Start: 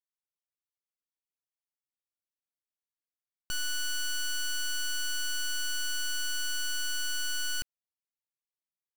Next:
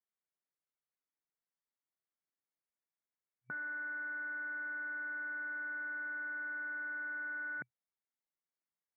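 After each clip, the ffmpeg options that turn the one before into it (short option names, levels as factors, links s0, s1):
-af "afftfilt=real='re*between(b*sr/4096,120,2300)':imag='im*between(b*sr/4096,120,2300)':win_size=4096:overlap=0.75"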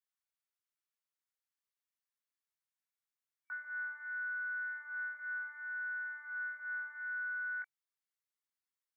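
-af "highpass=f=1000:w=0.5412,highpass=f=1000:w=1.3066,flanger=delay=19:depth=2:speed=0.34,volume=1.33"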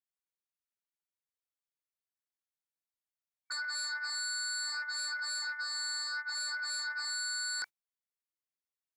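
-af "agate=range=0.0708:threshold=0.00398:ratio=16:detection=peak,aeval=exprs='0.0211*sin(PI/2*3.98*val(0)/0.0211)':c=same"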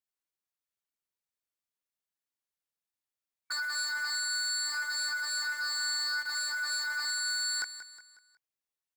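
-filter_complex "[0:a]asplit=2[s0][s1];[s1]acrusher=bits=6:mix=0:aa=0.000001,volume=0.531[s2];[s0][s2]amix=inputs=2:normalize=0,aecho=1:1:182|364|546|728:0.237|0.104|0.0459|0.0202"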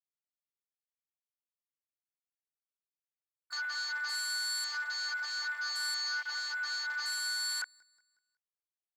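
-af "afwtdn=0.0112,volume=0.794"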